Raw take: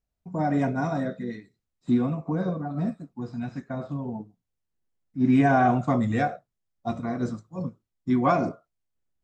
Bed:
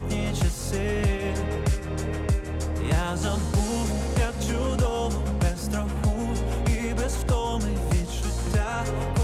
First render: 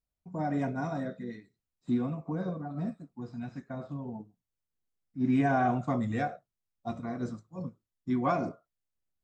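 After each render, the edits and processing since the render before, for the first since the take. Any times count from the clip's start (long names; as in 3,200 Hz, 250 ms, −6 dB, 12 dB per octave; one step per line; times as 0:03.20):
level −6.5 dB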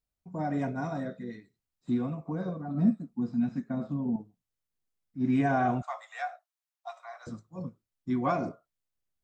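0:02.68–0:04.16: parametric band 220 Hz +13.5 dB
0:05.82–0:07.27: Butterworth high-pass 690 Hz 48 dB per octave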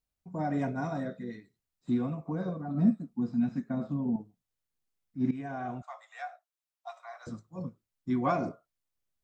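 0:05.31–0:07.35: fade in linear, from −15 dB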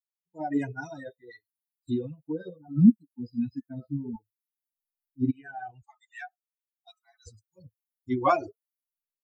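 spectral dynamics exaggerated over time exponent 3
automatic gain control gain up to 10 dB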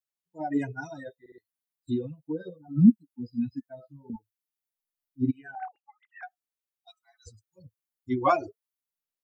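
0:01.20: stutter in place 0.06 s, 3 plays
0:03.68–0:04.10: low shelf with overshoot 420 Hz −13.5 dB, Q 3
0:05.55–0:06.23: three sine waves on the formant tracks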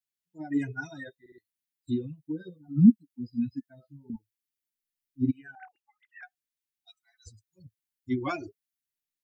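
flat-topped bell 750 Hz −13 dB
0:00.67–0:01.10: gain on a spectral selection 370–3,800 Hz +6 dB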